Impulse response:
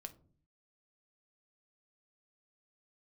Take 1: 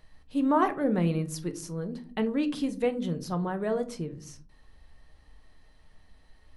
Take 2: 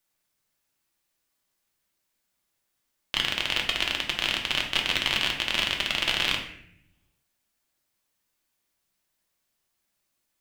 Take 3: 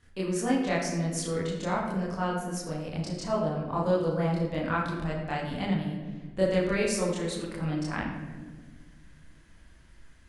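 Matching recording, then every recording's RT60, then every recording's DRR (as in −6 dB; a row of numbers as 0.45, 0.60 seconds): 1; 0.45, 0.70, 1.5 seconds; 7.5, 0.5, −6.5 decibels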